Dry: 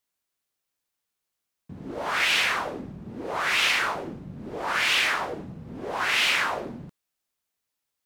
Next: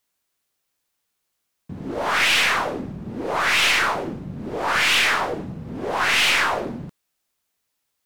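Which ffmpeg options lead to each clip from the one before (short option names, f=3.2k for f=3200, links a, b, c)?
-af "aeval=exprs='(tanh(10*val(0)+0.3)-tanh(0.3))/10':c=same,volume=7.5dB"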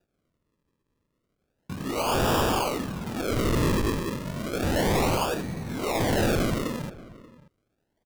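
-filter_complex "[0:a]acrusher=samples=41:mix=1:aa=0.000001:lfo=1:lforange=41:lforate=0.32,asoftclip=type=tanh:threshold=-20dB,asplit=2[a][b];[b]adelay=583.1,volume=-19dB,highshelf=f=4k:g=-13.1[c];[a][c]amix=inputs=2:normalize=0"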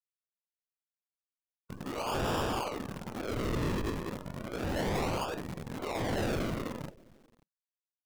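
-filter_complex "[0:a]afftdn=nr=35:nf=-40,acrossover=split=410|7200[a][b][c];[a]acrusher=bits=6:dc=4:mix=0:aa=0.000001[d];[d][b][c]amix=inputs=3:normalize=0,volume=-8dB"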